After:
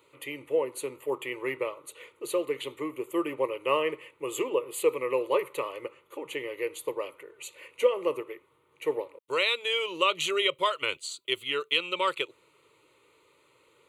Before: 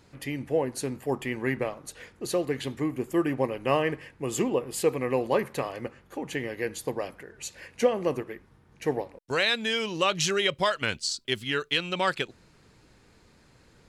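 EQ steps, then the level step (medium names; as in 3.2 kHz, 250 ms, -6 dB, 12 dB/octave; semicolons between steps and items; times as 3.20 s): Bessel high-pass 350 Hz, order 2; static phaser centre 1.1 kHz, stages 8; +2.0 dB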